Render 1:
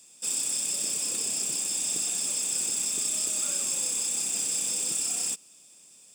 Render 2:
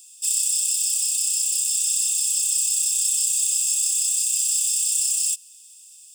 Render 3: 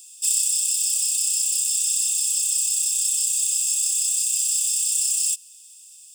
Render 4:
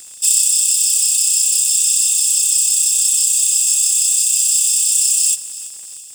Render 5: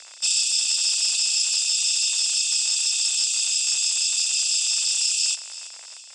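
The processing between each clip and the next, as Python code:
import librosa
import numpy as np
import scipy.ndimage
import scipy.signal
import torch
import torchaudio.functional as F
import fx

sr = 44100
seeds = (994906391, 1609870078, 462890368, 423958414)

y1 = scipy.signal.sosfilt(scipy.signal.cheby1(8, 1.0, 2600.0, 'highpass', fs=sr, output='sos'), x)
y1 = fx.high_shelf(y1, sr, hz=9200.0, db=9.0)
y1 = y1 * librosa.db_to_amplitude(4.0)
y2 = fx.rider(y1, sr, range_db=10, speed_s=0.5)
y3 = fx.dmg_crackle(y2, sr, seeds[0], per_s=91.0, level_db=-39.0)
y3 = fx.echo_feedback(y3, sr, ms=335, feedback_pct=51, wet_db=-16.0)
y3 = y3 * librosa.db_to_amplitude(7.5)
y4 = fx.cabinet(y3, sr, low_hz=410.0, low_slope=24, high_hz=5600.0, hz=(430.0, 660.0, 960.0, 1400.0, 2200.0, 3200.0), db=(-7, 4, 4, 4, 4, -4))
y4 = y4 * librosa.db_to_amplitude(3.0)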